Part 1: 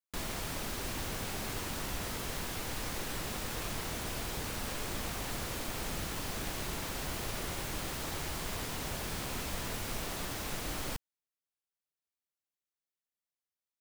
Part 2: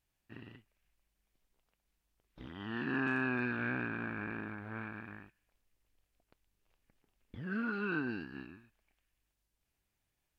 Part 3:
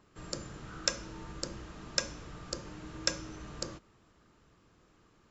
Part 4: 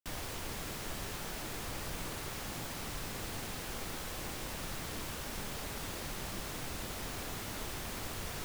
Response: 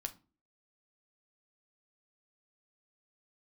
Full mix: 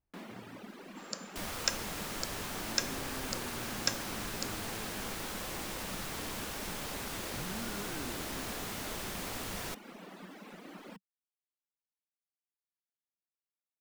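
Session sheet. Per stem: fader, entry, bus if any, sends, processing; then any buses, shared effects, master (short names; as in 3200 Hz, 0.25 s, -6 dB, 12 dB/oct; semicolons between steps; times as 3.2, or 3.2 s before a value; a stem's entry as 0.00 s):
-5.5 dB, 0.00 s, no send, elliptic high-pass 190 Hz; tone controls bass +11 dB, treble -14 dB; reverb removal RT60 1.6 s
-1.5 dB, 0.00 s, no send, limiter -34 dBFS, peak gain reduction 11 dB; LPF 1200 Hz
-0.5 dB, 0.80 s, no send, HPF 660 Hz
+2.0 dB, 1.30 s, no send, low shelf 210 Hz -5.5 dB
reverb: off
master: dry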